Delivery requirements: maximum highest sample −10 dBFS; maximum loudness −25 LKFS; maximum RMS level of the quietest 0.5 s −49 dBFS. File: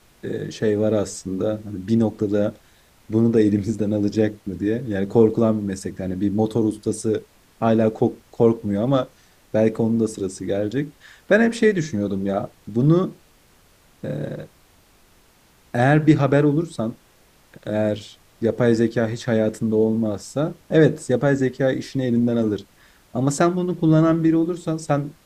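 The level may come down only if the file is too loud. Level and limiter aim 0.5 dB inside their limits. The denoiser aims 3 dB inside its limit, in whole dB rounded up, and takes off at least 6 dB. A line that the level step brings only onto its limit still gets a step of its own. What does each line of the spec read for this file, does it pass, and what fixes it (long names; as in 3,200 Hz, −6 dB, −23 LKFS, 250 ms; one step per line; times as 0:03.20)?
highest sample −3.0 dBFS: out of spec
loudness −21.0 LKFS: out of spec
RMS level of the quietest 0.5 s −55 dBFS: in spec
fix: level −4.5 dB
brickwall limiter −10.5 dBFS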